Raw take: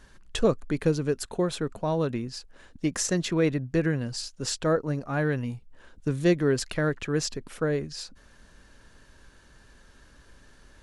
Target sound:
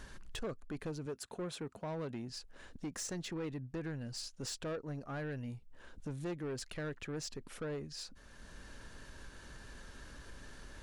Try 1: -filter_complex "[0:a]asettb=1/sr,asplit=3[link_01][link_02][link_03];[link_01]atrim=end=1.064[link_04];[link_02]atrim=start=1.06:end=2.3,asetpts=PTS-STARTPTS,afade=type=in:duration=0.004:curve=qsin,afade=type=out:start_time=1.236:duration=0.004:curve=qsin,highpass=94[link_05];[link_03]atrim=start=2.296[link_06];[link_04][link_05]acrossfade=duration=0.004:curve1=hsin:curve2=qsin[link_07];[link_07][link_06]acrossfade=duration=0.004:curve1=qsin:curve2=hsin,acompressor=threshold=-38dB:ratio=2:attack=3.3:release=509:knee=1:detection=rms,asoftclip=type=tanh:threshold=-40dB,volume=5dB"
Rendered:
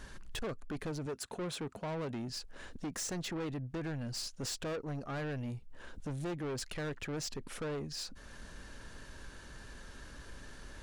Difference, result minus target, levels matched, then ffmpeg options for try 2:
downward compressor: peak gain reduction −6 dB
-filter_complex "[0:a]asettb=1/sr,asplit=3[link_01][link_02][link_03];[link_01]atrim=end=1.064[link_04];[link_02]atrim=start=1.06:end=2.3,asetpts=PTS-STARTPTS,afade=type=in:duration=0.004:curve=qsin,afade=type=out:start_time=1.236:duration=0.004:curve=qsin,highpass=94[link_05];[link_03]atrim=start=2.296[link_06];[link_04][link_05]acrossfade=duration=0.004:curve1=hsin:curve2=qsin[link_07];[link_07][link_06]acrossfade=duration=0.004:curve1=qsin:curve2=hsin,acompressor=threshold=-50dB:ratio=2:attack=3.3:release=509:knee=1:detection=rms,asoftclip=type=tanh:threshold=-40dB,volume=5dB"

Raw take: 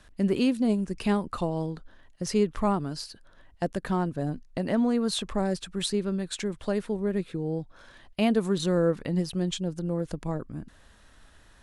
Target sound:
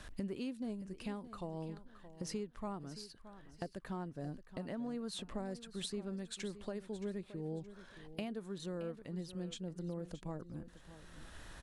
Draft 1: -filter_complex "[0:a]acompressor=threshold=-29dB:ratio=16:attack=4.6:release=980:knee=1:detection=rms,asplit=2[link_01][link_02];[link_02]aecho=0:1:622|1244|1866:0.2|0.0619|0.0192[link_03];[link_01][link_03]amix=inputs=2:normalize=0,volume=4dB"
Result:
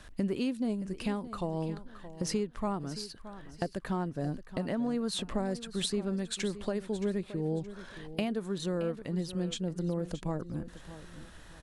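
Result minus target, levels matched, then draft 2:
downward compressor: peak gain reduction −9.5 dB
-filter_complex "[0:a]acompressor=threshold=-39dB:ratio=16:attack=4.6:release=980:knee=1:detection=rms,asplit=2[link_01][link_02];[link_02]aecho=0:1:622|1244|1866:0.2|0.0619|0.0192[link_03];[link_01][link_03]amix=inputs=2:normalize=0,volume=4dB"

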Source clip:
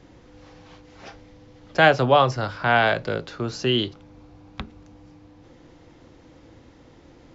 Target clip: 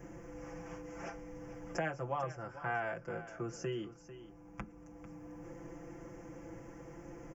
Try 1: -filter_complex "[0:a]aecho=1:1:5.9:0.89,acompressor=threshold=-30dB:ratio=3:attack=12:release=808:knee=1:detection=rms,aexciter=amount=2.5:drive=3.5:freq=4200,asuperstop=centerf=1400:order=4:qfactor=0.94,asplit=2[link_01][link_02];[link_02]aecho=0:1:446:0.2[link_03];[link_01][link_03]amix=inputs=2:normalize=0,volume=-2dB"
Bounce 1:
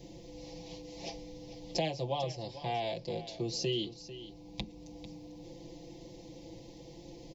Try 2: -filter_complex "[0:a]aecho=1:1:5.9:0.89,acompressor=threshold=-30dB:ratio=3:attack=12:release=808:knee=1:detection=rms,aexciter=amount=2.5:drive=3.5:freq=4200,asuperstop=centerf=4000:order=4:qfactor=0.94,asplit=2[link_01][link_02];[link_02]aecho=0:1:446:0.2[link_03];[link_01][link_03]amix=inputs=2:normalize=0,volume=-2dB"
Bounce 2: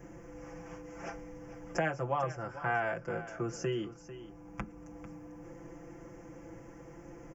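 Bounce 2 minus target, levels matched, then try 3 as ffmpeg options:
downward compressor: peak gain reduction −4.5 dB
-filter_complex "[0:a]aecho=1:1:5.9:0.89,acompressor=threshold=-37dB:ratio=3:attack=12:release=808:knee=1:detection=rms,aexciter=amount=2.5:drive=3.5:freq=4200,asuperstop=centerf=4000:order=4:qfactor=0.94,asplit=2[link_01][link_02];[link_02]aecho=0:1:446:0.2[link_03];[link_01][link_03]amix=inputs=2:normalize=0,volume=-2dB"

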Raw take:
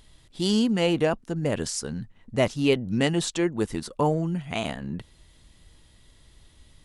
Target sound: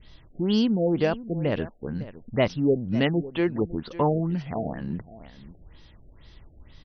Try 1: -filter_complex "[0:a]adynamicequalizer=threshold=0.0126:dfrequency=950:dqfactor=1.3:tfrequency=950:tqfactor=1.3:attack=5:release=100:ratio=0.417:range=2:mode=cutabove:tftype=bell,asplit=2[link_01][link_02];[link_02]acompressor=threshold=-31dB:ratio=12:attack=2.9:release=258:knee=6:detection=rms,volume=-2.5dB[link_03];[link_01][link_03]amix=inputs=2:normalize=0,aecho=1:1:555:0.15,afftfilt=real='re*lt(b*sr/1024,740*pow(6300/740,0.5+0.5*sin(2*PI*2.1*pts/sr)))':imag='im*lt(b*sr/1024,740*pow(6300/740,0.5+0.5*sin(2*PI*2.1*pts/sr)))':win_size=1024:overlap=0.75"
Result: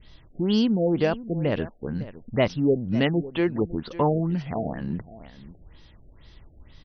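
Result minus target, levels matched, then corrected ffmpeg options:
downward compressor: peak gain reduction −8 dB
-filter_complex "[0:a]adynamicequalizer=threshold=0.0126:dfrequency=950:dqfactor=1.3:tfrequency=950:tqfactor=1.3:attack=5:release=100:ratio=0.417:range=2:mode=cutabove:tftype=bell,asplit=2[link_01][link_02];[link_02]acompressor=threshold=-40dB:ratio=12:attack=2.9:release=258:knee=6:detection=rms,volume=-2.5dB[link_03];[link_01][link_03]amix=inputs=2:normalize=0,aecho=1:1:555:0.15,afftfilt=real='re*lt(b*sr/1024,740*pow(6300/740,0.5+0.5*sin(2*PI*2.1*pts/sr)))':imag='im*lt(b*sr/1024,740*pow(6300/740,0.5+0.5*sin(2*PI*2.1*pts/sr)))':win_size=1024:overlap=0.75"

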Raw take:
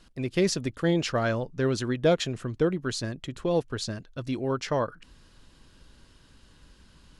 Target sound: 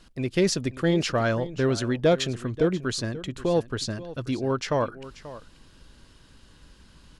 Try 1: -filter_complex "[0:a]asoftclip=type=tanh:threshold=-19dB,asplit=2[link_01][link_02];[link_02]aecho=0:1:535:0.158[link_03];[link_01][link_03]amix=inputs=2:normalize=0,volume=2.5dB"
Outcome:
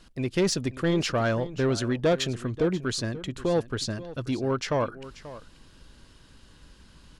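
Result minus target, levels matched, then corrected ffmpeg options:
soft clipping: distortion +11 dB
-filter_complex "[0:a]asoftclip=type=tanh:threshold=-11.5dB,asplit=2[link_01][link_02];[link_02]aecho=0:1:535:0.158[link_03];[link_01][link_03]amix=inputs=2:normalize=0,volume=2.5dB"

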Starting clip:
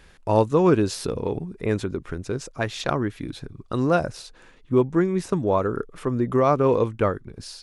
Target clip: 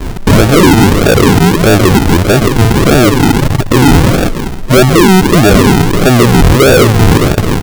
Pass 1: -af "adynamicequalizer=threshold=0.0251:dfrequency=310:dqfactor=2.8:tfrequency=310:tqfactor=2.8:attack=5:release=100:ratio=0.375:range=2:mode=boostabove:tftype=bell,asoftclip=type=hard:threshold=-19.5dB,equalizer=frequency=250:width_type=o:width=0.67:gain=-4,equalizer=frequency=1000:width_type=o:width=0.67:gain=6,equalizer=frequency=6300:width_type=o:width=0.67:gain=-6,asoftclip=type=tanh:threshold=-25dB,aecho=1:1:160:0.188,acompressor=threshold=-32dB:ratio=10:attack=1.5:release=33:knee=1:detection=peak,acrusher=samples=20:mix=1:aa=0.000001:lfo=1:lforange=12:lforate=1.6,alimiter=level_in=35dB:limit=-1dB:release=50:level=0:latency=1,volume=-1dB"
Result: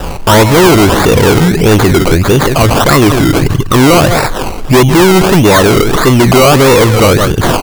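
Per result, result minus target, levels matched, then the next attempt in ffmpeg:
hard clipping: distortion +29 dB; sample-and-hold swept by an LFO: distortion −13 dB; downward compressor: peak gain reduction +7 dB
-af "adynamicequalizer=threshold=0.0251:dfrequency=310:dqfactor=2.8:tfrequency=310:tqfactor=2.8:attack=5:release=100:ratio=0.375:range=2:mode=boostabove:tftype=bell,asoftclip=type=hard:threshold=-7.5dB,equalizer=frequency=250:width_type=o:width=0.67:gain=-4,equalizer=frequency=1000:width_type=o:width=0.67:gain=6,equalizer=frequency=6300:width_type=o:width=0.67:gain=-6,asoftclip=type=tanh:threshold=-25dB,aecho=1:1:160:0.188,acompressor=threshold=-32dB:ratio=10:attack=1.5:release=33:knee=1:detection=peak,acrusher=samples=20:mix=1:aa=0.000001:lfo=1:lforange=12:lforate=1.6,alimiter=level_in=35dB:limit=-1dB:release=50:level=0:latency=1,volume=-1dB"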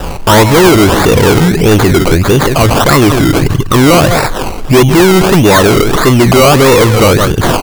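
sample-and-hold swept by an LFO: distortion −13 dB; downward compressor: peak gain reduction +7.5 dB
-af "adynamicequalizer=threshold=0.0251:dfrequency=310:dqfactor=2.8:tfrequency=310:tqfactor=2.8:attack=5:release=100:ratio=0.375:range=2:mode=boostabove:tftype=bell,asoftclip=type=hard:threshold=-7.5dB,equalizer=frequency=250:width_type=o:width=0.67:gain=-4,equalizer=frequency=1000:width_type=o:width=0.67:gain=6,equalizer=frequency=6300:width_type=o:width=0.67:gain=-6,asoftclip=type=tanh:threshold=-25dB,aecho=1:1:160:0.188,acompressor=threshold=-32dB:ratio=10:attack=1.5:release=33:knee=1:detection=peak,acrusher=samples=61:mix=1:aa=0.000001:lfo=1:lforange=36.6:lforate=1.6,alimiter=level_in=35dB:limit=-1dB:release=50:level=0:latency=1,volume=-1dB"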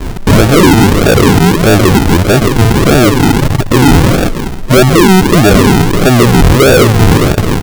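downward compressor: peak gain reduction +7.5 dB
-af "adynamicequalizer=threshold=0.0251:dfrequency=310:dqfactor=2.8:tfrequency=310:tqfactor=2.8:attack=5:release=100:ratio=0.375:range=2:mode=boostabove:tftype=bell,asoftclip=type=hard:threshold=-7.5dB,equalizer=frequency=250:width_type=o:width=0.67:gain=-4,equalizer=frequency=1000:width_type=o:width=0.67:gain=6,equalizer=frequency=6300:width_type=o:width=0.67:gain=-6,asoftclip=type=tanh:threshold=-25dB,aecho=1:1:160:0.188,acrusher=samples=61:mix=1:aa=0.000001:lfo=1:lforange=36.6:lforate=1.6,alimiter=level_in=35dB:limit=-1dB:release=50:level=0:latency=1,volume=-1dB"

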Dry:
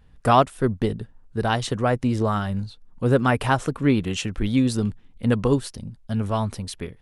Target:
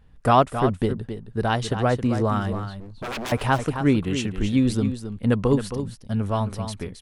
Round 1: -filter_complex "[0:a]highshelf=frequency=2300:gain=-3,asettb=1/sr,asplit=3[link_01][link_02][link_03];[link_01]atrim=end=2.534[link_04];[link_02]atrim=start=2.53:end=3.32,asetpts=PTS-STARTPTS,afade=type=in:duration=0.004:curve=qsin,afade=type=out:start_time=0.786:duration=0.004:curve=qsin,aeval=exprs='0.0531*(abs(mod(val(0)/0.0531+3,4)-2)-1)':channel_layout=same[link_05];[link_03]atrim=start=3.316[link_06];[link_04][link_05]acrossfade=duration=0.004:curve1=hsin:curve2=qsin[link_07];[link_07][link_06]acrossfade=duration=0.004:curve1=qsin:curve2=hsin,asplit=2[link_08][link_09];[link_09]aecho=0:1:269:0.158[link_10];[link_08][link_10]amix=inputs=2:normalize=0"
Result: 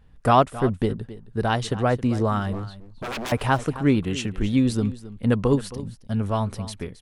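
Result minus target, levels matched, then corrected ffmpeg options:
echo-to-direct −6.5 dB
-filter_complex "[0:a]highshelf=frequency=2300:gain=-3,asettb=1/sr,asplit=3[link_01][link_02][link_03];[link_01]atrim=end=2.534[link_04];[link_02]atrim=start=2.53:end=3.32,asetpts=PTS-STARTPTS,afade=type=in:duration=0.004:curve=qsin,afade=type=out:start_time=0.786:duration=0.004:curve=qsin,aeval=exprs='0.0531*(abs(mod(val(0)/0.0531+3,4)-2)-1)':channel_layout=same[link_05];[link_03]atrim=start=3.316[link_06];[link_04][link_05]acrossfade=duration=0.004:curve1=hsin:curve2=qsin[link_07];[link_07][link_06]acrossfade=duration=0.004:curve1=qsin:curve2=hsin,asplit=2[link_08][link_09];[link_09]aecho=0:1:269:0.335[link_10];[link_08][link_10]amix=inputs=2:normalize=0"

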